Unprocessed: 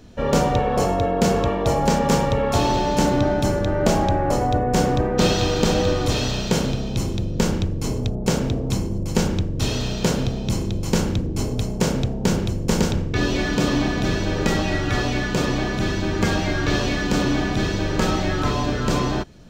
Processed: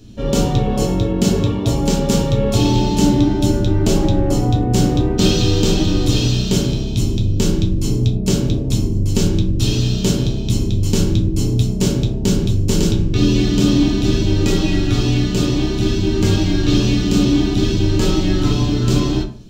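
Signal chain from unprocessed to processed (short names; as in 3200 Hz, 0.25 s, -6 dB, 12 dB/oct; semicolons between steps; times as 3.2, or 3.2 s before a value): band shelf 990 Hz -10.5 dB 2.6 oct; reverb RT60 0.40 s, pre-delay 5 ms, DRR 0 dB; gain +2.5 dB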